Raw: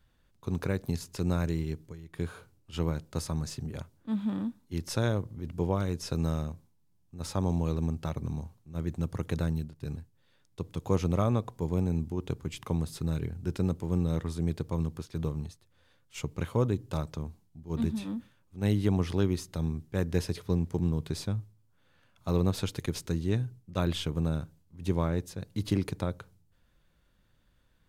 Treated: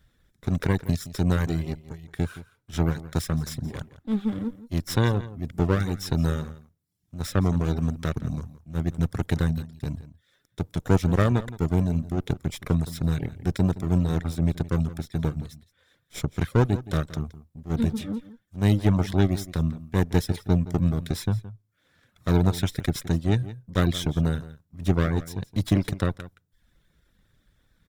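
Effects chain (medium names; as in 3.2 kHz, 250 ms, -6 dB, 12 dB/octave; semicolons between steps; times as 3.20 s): comb filter that takes the minimum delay 0.55 ms; reverb removal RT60 0.66 s; echo from a far wall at 29 m, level -16 dB; trim +6.5 dB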